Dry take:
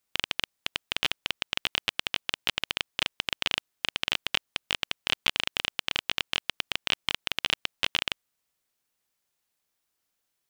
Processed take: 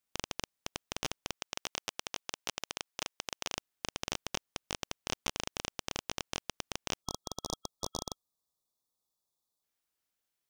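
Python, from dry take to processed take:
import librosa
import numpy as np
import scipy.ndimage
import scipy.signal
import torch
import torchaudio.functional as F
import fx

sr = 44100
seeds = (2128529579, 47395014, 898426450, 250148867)

y = np.minimum(x, 2.0 * 10.0 ** (-20.5 / 20.0) - x)
y = fx.low_shelf(y, sr, hz=300.0, db=-11.5, at=(1.34, 3.56))
y = fx.spec_erase(y, sr, start_s=7.02, length_s=2.61, low_hz=1300.0, high_hz=3300.0)
y = y * librosa.db_to_amplitude(-6.0)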